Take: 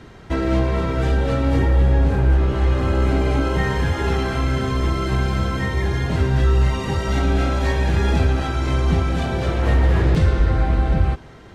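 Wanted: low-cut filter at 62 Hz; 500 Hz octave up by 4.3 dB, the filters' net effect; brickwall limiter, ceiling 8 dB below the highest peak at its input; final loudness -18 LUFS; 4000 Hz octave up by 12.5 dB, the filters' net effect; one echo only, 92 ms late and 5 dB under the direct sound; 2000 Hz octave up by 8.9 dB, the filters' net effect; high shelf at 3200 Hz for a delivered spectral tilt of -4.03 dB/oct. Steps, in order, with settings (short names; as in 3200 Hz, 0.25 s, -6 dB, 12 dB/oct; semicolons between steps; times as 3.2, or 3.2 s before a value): HPF 62 Hz; bell 500 Hz +5 dB; bell 2000 Hz +6.5 dB; high shelf 3200 Hz +6.5 dB; bell 4000 Hz +9 dB; limiter -11.5 dBFS; echo 92 ms -5 dB; gain +1 dB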